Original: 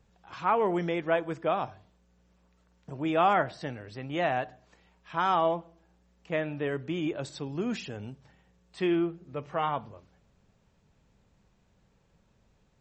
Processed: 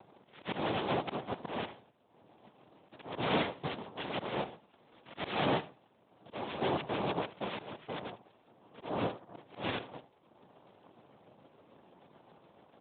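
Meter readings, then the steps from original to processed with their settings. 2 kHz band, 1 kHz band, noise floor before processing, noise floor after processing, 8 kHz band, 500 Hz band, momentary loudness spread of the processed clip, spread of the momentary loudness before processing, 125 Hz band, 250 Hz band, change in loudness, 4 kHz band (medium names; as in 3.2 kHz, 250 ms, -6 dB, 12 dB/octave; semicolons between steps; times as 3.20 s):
-5.0 dB, -8.5 dB, -68 dBFS, -67 dBFS, under -25 dB, -7.0 dB, 17 LU, 14 LU, -4.5 dB, -6.5 dB, -6.5 dB, +2.0 dB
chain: rattle on loud lows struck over -38 dBFS, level -17 dBFS; level-controlled noise filter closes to 900 Hz, open at -22 dBFS; peaking EQ 770 Hz +5.5 dB 1.1 oct; comb 2.1 ms, depth 39%; upward compressor, threshold -42 dBFS; LFO low-pass sine 6.8 Hz 870–1900 Hz; noise-vocoded speech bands 2; slow attack 310 ms; saturation -17.5 dBFS, distortion -15 dB; on a send: delay 78 ms -17 dB; on the sum: trim -3 dB; AMR-NB 12.2 kbps 8 kHz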